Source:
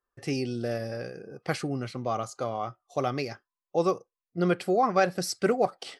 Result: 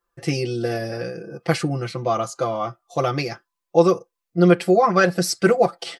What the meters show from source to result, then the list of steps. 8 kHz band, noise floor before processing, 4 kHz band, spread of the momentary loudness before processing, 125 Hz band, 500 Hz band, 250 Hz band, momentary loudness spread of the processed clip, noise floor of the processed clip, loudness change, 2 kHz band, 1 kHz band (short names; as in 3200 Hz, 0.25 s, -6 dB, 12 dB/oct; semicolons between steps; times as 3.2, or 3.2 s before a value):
+8.0 dB, under -85 dBFS, +8.0 dB, 12 LU, +10.0 dB, +8.5 dB, +9.0 dB, 13 LU, -82 dBFS, +8.0 dB, +9.0 dB, +6.0 dB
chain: comb 5.9 ms, depth 94%; gain +5.5 dB